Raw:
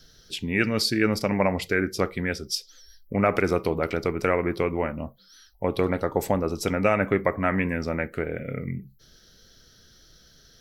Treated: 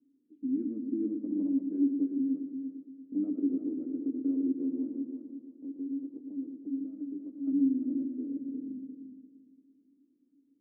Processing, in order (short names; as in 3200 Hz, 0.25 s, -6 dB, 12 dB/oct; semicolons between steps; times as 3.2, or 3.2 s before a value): 5.03–7.47 compressor 2.5:1, threshold -35 dBFS, peak gain reduction 12.5 dB; Butterworth band-pass 280 Hz, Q 6.6; multi-head echo 0.115 s, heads first and third, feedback 45%, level -8 dB; gain +6 dB